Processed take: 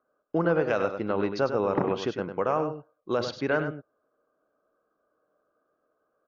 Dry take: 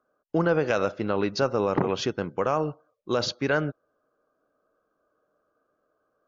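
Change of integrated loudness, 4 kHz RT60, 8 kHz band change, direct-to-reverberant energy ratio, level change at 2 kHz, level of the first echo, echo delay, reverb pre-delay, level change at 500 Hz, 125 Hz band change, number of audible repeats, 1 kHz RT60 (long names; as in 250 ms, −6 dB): −1.5 dB, no reverb audible, can't be measured, no reverb audible, −2.0 dB, −8.5 dB, 100 ms, no reverb audible, −1.0 dB, −3.5 dB, 1, no reverb audible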